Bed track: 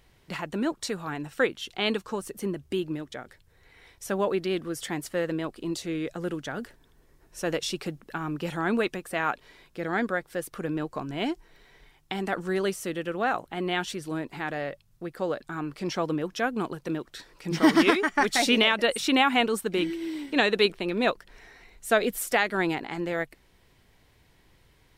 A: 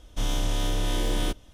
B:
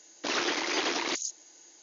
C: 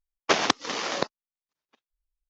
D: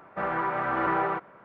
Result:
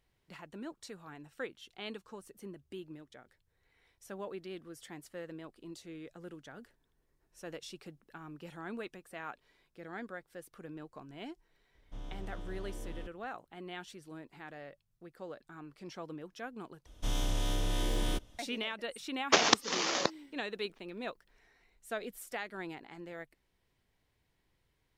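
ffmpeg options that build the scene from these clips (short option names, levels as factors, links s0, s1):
-filter_complex "[1:a]asplit=2[s0][s1];[0:a]volume=0.158[s2];[s0]lowpass=f=1200:p=1[s3];[3:a]highshelf=f=6600:g=11[s4];[s2]asplit=2[s5][s6];[s5]atrim=end=16.864[s7];[s1]atrim=end=1.53,asetpts=PTS-STARTPTS,volume=0.501[s8];[s6]atrim=start=18.386[s9];[s3]atrim=end=1.53,asetpts=PTS-STARTPTS,volume=0.141,afade=t=in:d=0.004:c=hsin,afade=t=out:st=1.526:d=0.004:c=hsin,adelay=11750[s10];[s4]atrim=end=2.29,asetpts=PTS-STARTPTS,volume=0.631,afade=t=in:d=0.004:c=hsin,afade=t=out:st=2.286:d=0.004:c=hsin,adelay=19030[s11];[s7][s8]acrossfade=d=0.004:c1=hsin:c2=hsin[s12];[s12][s9]acrossfade=d=0.004:c1=hsin:c2=hsin[s13];[s13][s10][s11]amix=inputs=3:normalize=0"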